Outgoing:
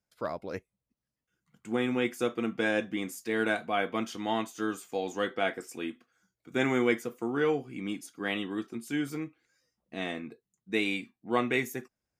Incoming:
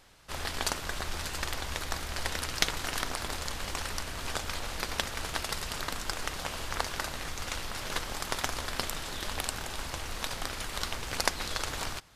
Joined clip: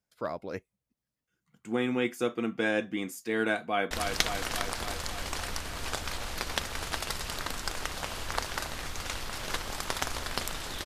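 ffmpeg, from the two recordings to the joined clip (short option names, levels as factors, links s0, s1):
-filter_complex "[0:a]apad=whole_dur=10.85,atrim=end=10.85,atrim=end=3.912[s0];[1:a]atrim=start=2.328:end=9.27[s1];[s0][s1]acrossfade=d=0.004:c1=hsin:c2=hsin,asplit=2[s2][s3];[s3]afade=t=in:st=3.62:d=0.01,afade=t=out:st=3.91:d=0.01,aecho=0:1:280|560|840|1120|1400|1680|1960|2240|2520|2800|3080|3360:0.562341|0.393639|0.275547|0.192883|0.135018|0.0945127|0.0661589|0.0463112|0.0324179|0.0226925|0.0158848|0.0111193[s4];[s2][s4]amix=inputs=2:normalize=0"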